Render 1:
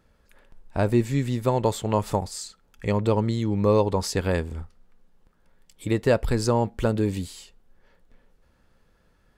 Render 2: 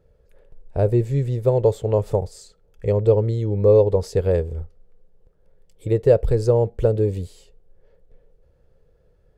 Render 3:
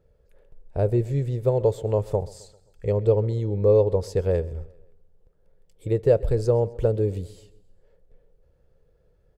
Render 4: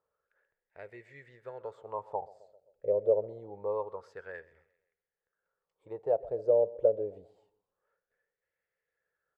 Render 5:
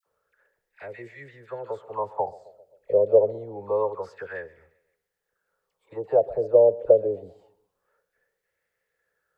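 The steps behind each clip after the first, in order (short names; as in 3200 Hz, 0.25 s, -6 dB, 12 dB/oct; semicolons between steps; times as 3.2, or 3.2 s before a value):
EQ curve 140 Hz 0 dB, 250 Hz -14 dB, 460 Hz +5 dB, 1000 Hz -14 dB; gain +5 dB
feedback echo 0.131 s, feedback 49%, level -21 dB; gain -3.5 dB
wah 0.26 Hz 570–2000 Hz, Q 6.2; gain +3.5 dB
dispersion lows, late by 65 ms, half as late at 1200 Hz; gain +8.5 dB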